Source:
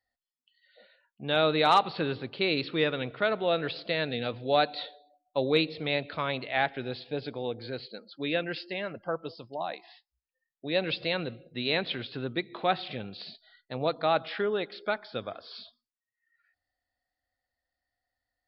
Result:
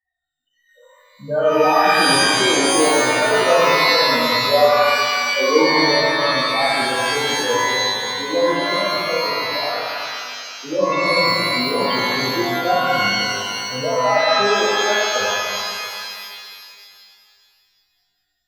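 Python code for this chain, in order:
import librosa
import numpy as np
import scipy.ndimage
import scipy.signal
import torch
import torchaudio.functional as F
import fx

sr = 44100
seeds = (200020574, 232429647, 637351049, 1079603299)

y = fx.high_shelf(x, sr, hz=4100.0, db=-6.5)
y = fx.spec_topn(y, sr, count=4)
y = fx.rev_shimmer(y, sr, seeds[0], rt60_s=2.2, semitones=12, shimmer_db=-2, drr_db=-6.5)
y = y * librosa.db_to_amplitude(5.5)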